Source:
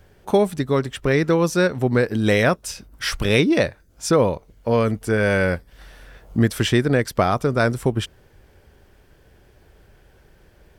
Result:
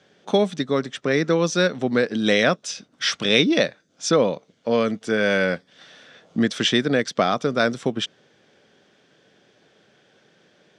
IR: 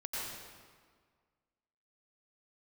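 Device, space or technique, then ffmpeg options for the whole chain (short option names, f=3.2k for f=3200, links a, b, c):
television speaker: -filter_complex "[0:a]highpass=f=170:w=0.5412,highpass=f=170:w=1.3066,equalizer=f=370:t=q:w=4:g=-4,equalizer=f=930:t=q:w=4:g=-6,equalizer=f=3.5k:t=q:w=4:g=8,equalizer=f=6k:t=q:w=4:g=4,lowpass=f=7k:w=0.5412,lowpass=f=7k:w=1.3066,asettb=1/sr,asplit=3[a][b][c];[a]atrim=end=0.664[d];[b]atrim=start=0.66:end=1.36,asetpts=PTS-STARTPTS,afade=t=in:d=0.004:c=qsin,afade=t=out:st=0.696:d=0.004:c=qsin,equalizer=f=3.2k:t=o:w=0.66:g=-5.5[e];[c]atrim=start=1.356[f];[d][e]acrossfade=d=0.004:c1=hsin:c2=qsin[g];[g][f]acrossfade=d=0.004:c1=qsin:c2=hsin"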